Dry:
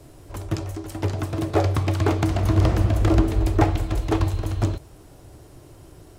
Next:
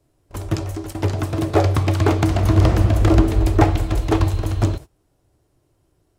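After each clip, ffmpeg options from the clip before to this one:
ffmpeg -i in.wav -af "agate=range=-22dB:threshold=-35dB:ratio=16:detection=peak,volume=4dB" out.wav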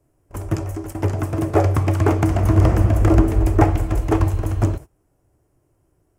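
ffmpeg -i in.wav -af "equalizer=frequency=3900:width=1.8:gain=-14" out.wav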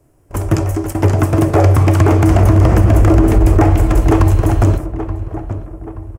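ffmpeg -i in.wav -filter_complex "[0:a]asplit=2[link_01][link_02];[link_02]adelay=877,lowpass=frequency=1800:poles=1,volume=-15dB,asplit=2[link_03][link_04];[link_04]adelay=877,lowpass=frequency=1800:poles=1,volume=0.45,asplit=2[link_05][link_06];[link_06]adelay=877,lowpass=frequency=1800:poles=1,volume=0.45,asplit=2[link_07][link_08];[link_08]adelay=877,lowpass=frequency=1800:poles=1,volume=0.45[link_09];[link_01][link_03][link_05][link_07][link_09]amix=inputs=5:normalize=0,alimiter=level_in=11dB:limit=-1dB:release=50:level=0:latency=1,volume=-1dB" out.wav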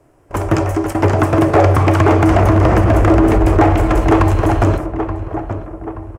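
ffmpeg -i in.wav -filter_complex "[0:a]asplit=2[link_01][link_02];[link_02]highpass=frequency=720:poles=1,volume=11dB,asoftclip=type=tanh:threshold=-1.5dB[link_03];[link_01][link_03]amix=inputs=2:normalize=0,lowpass=frequency=1900:poles=1,volume=-6dB,asplit=2[link_04][link_05];[link_05]asoftclip=type=tanh:threshold=-17.5dB,volume=-7dB[link_06];[link_04][link_06]amix=inputs=2:normalize=0" out.wav

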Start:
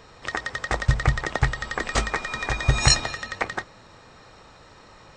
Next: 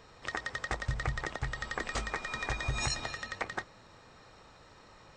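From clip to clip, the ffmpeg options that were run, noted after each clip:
ffmpeg -i in.wav -af "alimiter=limit=-14.5dB:level=0:latency=1:release=132,volume=-7dB" out.wav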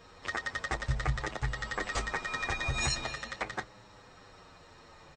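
ffmpeg -i in.wav -filter_complex "[0:a]asplit=2[link_01][link_02];[link_02]adelay=8.1,afreqshift=-0.46[link_03];[link_01][link_03]amix=inputs=2:normalize=1,volume=4.5dB" out.wav

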